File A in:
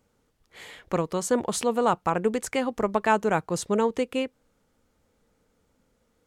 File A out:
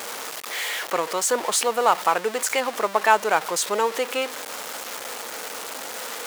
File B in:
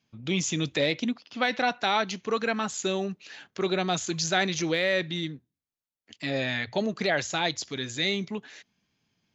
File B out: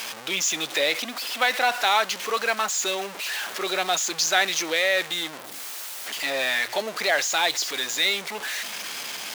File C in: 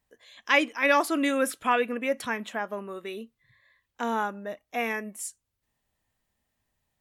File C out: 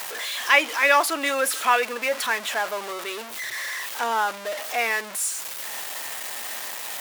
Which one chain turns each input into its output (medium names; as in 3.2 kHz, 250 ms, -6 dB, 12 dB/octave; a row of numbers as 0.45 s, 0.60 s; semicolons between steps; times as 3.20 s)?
jump at every zero crossing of -29 dBFS; high-pass 640 Hz 12 dB/octave; normalise loudness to -24 LUFS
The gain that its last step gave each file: +5.5 dB, +4.0 dB, +4.5 dB